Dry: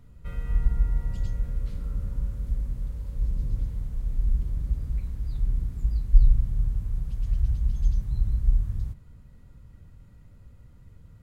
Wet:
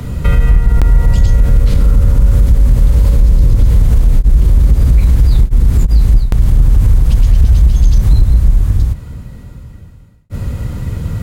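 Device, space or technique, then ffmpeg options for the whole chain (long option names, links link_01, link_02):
mastering chain: -filter_complex "[0:a]highpass=frequency=54:poles=1,equalizer=frequency=1400:width_type=o:width=1.3:gain=-2,acrossover=split=110|270[link_01][link_02][link_03];[link_01]acompressor=threshold=-28dB:ratio=4[link_04];[link_02]acompressor=threshold=-53dB:ratio=4[link_05];[link_03]acompressor=threshold=-53dB:ratio=4[link_06];[link_04][link_05][link_06]amix=inputs=3:normalize=0,acompressor=threshold=-36dB:ratio=2,asoftclip=type=hard:threshold=-31dB,alimiter=level_in=34.5dB:limit=-1dB:release=50:level=0:latency=1,volume=-1dB"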